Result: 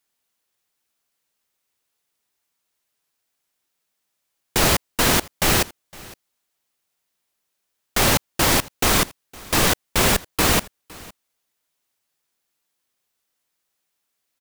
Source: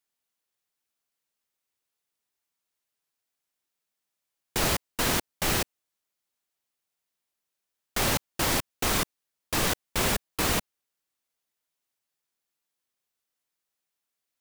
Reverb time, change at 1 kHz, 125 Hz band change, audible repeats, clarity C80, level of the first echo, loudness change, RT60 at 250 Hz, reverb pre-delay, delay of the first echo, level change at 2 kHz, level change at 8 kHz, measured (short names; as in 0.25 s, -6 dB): none, +8.0 dB, +8.0 dB, 1, none, -22.5 dB, +8.0 dB, none, none, 0.511 s, +8.0 dB, +8.0 dB